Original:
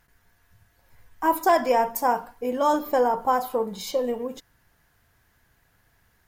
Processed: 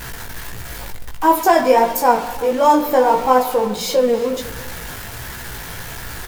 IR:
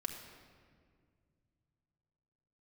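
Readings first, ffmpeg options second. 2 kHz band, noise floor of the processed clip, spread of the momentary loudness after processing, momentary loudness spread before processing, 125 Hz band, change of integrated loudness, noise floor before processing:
+8.5 dB, -32 dBFS, 18 LU, 8 LU, no reading, +8.0 dB, -65 dBFS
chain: -filter_complex "[0:a]aeval=exprs='val(0)+0.5*0.0266*sgn(val(0))':c=same,asplit=2[s0][s1];[1:a]atrim=start_sample=2205,asetrate=83790,aresample=44100[s2];[s1][s2]afir=irnorm=-1:irlink=0,volume=1.06[s3];[s0][s3]amix=inputs=2:normalize=0,flanger=delay=15.5:depth=4:speed=1.5,aecho=1:1:345:0.112,volume=2"

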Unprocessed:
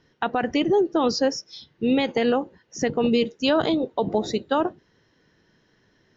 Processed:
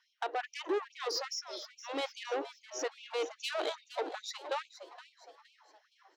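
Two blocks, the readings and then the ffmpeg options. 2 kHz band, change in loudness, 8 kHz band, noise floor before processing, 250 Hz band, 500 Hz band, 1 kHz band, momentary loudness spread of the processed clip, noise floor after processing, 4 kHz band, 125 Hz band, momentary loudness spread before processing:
-9.5 dB, -14.0 dB, no reading, -64 dBFS, -24.5 dB, -14.5 dB, -11.5 dB, 9 LU, -73 dBFS, -9.0 dB, under -40 dB, 7 LU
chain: -filter_complex "[0:a]asoftclip=type=tanh:threshold=0.075,asplit=5[s0][s1][s2][s3][s4];[s1]adelay=467,afreqshift=140,volume=0.211[s5];[s2]adelay=934,afreqshift=280,volume=0.0891[s6];[s3]adelay=1401,afreqshift=420,volume=0.0372[s7];[s4]adelay=1868,afreqshift=560,volume=0.0157[s8];[s0][s5][s6][s7][s8]amix=inputs=5:normalize=0,afftfilt=real='re*gte(b*sr/1024,270*pow(2300/270,0.5+0.5*sin(2*PI*2.4*pts/sr)))':imag='im*gte(b*sr/1024,270*pow(2300/270,0.5+0.5*sin(2*PI*2.4*pts/sr)))':win_size=1024:overlap=0.75,volume=0.562"

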